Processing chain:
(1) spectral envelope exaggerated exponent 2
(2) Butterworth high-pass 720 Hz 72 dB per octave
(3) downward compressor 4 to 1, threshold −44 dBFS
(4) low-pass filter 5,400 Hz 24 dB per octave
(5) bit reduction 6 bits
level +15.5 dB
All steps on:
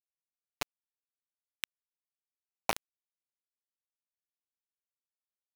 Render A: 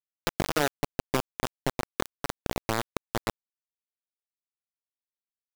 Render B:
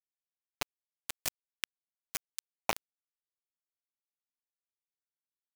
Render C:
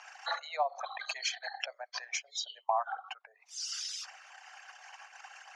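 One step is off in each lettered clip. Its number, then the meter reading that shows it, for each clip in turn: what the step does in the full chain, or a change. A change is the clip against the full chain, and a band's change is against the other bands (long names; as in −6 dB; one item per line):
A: 2, 125 Hz band +13.5 dB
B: 4, 8 kHz band +5.5 dB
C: 5, change in crest factor −10.0 dB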